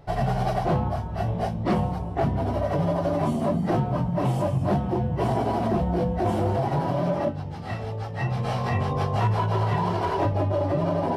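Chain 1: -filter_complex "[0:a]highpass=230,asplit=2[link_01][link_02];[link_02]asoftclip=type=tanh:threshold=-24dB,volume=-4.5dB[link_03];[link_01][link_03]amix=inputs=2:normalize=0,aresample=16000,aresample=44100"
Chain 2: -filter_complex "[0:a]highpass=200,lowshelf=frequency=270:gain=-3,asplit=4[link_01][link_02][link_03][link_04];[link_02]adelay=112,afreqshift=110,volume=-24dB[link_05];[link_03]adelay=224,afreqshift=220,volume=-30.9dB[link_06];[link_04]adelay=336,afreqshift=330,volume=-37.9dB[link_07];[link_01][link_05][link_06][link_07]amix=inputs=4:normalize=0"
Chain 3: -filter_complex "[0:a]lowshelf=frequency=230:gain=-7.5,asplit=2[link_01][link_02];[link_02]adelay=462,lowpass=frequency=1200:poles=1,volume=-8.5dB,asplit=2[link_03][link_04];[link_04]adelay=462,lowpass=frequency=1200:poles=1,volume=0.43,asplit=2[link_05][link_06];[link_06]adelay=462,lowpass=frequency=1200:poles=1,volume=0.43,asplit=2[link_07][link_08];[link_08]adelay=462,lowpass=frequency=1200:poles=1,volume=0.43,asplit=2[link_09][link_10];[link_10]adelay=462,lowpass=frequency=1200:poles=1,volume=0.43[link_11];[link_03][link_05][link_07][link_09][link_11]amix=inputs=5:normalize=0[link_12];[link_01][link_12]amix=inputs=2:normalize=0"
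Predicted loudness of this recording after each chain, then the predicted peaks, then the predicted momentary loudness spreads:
−25.0, −28.5, −27.5 LKFS; −11.5, −13.5, −14.0 dBFS; 5, 6, 4 LU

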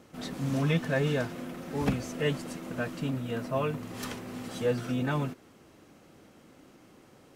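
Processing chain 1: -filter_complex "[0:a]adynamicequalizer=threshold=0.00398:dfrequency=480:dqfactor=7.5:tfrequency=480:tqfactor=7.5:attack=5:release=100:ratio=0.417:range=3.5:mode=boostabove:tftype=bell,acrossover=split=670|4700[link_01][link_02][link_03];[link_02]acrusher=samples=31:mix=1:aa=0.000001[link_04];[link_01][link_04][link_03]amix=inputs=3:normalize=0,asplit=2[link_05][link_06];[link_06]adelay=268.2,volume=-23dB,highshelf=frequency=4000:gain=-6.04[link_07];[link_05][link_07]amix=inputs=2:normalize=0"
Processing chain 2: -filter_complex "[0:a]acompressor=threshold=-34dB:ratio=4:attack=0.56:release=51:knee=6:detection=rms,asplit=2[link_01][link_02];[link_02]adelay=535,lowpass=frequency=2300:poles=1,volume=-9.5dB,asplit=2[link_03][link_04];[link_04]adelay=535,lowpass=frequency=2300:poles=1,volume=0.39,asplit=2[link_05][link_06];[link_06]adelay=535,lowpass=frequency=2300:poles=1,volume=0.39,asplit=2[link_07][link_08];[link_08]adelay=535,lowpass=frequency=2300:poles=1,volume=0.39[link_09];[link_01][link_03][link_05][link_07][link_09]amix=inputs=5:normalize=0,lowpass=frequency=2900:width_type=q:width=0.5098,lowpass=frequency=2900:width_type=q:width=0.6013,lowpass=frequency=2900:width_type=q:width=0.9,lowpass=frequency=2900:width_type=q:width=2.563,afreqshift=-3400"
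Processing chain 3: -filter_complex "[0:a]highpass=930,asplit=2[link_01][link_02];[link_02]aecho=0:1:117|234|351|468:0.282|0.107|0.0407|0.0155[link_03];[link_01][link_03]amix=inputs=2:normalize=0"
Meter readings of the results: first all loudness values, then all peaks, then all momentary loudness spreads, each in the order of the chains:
−31.0, −35.5, −39.5 LKFS; −12.0, −25.0, −21.0 dBFS; 12, 17, 10 LU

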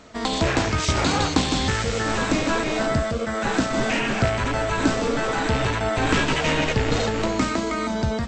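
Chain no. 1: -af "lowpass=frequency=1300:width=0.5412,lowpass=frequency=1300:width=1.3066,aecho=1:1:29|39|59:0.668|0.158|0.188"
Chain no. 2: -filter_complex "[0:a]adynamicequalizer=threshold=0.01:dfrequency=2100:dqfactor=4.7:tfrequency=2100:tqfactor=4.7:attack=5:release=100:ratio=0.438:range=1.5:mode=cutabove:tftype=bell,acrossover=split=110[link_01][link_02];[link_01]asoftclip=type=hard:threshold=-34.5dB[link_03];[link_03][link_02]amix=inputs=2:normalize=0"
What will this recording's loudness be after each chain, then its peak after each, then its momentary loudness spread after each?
−22.5, −23.0 LKFS; −6.5, −4.5 dBFS; 3, 3 LU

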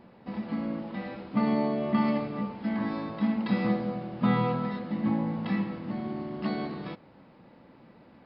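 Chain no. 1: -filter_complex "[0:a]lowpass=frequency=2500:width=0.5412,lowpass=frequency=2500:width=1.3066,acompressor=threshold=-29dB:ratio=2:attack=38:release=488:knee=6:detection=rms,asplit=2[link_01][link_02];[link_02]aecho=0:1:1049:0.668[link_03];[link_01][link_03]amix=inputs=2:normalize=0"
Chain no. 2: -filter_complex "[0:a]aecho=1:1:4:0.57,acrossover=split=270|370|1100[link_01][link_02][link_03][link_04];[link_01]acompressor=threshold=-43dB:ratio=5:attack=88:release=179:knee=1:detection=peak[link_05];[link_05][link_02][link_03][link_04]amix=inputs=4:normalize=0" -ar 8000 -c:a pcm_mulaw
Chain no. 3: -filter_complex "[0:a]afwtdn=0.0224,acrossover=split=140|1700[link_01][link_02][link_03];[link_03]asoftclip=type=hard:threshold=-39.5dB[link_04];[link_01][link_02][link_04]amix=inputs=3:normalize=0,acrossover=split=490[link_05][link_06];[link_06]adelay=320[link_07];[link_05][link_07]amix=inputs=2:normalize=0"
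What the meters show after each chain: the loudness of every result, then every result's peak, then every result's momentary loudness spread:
−32.0, −32.0, −31.0 LKFS; −17.0, −16.0, −15.5 dBFS; 9, 8, 10 LU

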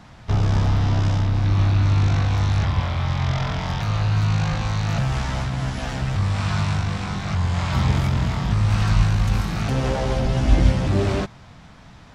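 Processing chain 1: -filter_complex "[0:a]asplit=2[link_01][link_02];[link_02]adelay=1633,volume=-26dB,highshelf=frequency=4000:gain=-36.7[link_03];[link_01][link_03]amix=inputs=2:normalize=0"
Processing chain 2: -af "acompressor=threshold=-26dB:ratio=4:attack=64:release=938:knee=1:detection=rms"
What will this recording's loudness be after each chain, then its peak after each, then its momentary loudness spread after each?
−21.5, −29.5 LKFS; −4.0, −16.0 dBFS; 7, 3 LU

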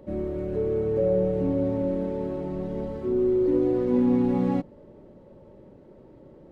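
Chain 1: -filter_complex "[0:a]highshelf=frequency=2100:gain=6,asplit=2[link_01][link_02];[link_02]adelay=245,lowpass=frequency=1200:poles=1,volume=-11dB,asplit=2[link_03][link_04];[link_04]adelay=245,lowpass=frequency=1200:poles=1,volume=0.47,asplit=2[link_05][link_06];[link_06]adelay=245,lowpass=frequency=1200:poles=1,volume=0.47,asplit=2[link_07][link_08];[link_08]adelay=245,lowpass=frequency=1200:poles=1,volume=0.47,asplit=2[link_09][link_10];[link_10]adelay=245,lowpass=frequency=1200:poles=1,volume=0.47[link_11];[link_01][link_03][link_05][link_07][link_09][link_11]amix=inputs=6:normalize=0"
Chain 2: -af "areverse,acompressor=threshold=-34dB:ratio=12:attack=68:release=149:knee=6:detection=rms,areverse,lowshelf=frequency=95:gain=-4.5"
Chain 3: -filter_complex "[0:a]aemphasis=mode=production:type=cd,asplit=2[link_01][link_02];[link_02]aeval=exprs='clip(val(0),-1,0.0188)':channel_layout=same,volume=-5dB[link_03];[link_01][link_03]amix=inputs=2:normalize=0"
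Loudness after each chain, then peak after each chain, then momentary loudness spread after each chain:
−24.5, −36.0, −23.0 LKFS; −11.0, −22.0, −8.0 dBFS; 9, 16, 9 LU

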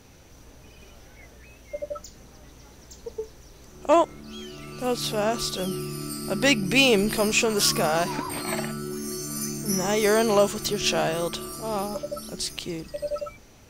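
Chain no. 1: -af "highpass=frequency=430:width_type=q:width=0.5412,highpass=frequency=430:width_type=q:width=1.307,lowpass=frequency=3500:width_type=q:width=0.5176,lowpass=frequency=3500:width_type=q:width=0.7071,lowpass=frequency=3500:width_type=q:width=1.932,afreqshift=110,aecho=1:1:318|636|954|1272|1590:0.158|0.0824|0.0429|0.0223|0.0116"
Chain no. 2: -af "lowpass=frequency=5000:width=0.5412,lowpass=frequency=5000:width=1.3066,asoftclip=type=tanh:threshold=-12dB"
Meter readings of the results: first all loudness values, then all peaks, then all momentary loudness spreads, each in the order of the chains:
−26.5, −26.5 LKFS; −7.0, −12.5 dBFS; 19, 16 LU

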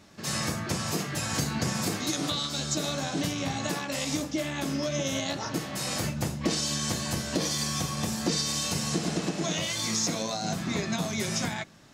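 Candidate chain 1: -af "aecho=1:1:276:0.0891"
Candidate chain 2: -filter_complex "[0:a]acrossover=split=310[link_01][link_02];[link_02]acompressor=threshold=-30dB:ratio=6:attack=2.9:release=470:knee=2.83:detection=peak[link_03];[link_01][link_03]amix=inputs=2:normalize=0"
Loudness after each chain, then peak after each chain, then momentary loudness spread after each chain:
−29.5, −32.0 LKFS; −15.0, −17.0 dBFS; 4, 3 LU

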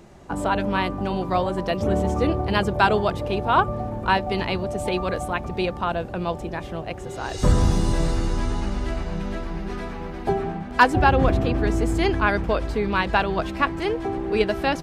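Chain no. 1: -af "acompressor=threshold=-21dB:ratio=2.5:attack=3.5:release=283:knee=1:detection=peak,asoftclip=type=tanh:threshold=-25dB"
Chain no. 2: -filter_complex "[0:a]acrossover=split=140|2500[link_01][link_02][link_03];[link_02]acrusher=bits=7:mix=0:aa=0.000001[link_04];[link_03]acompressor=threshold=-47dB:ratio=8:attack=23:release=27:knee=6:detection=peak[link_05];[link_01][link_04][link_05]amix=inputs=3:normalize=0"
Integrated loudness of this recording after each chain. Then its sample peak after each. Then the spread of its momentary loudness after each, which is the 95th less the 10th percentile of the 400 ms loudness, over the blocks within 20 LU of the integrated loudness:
−31.0, −24.0 LKFS; −25.0, −2.5 dBFS; 4, 11 LU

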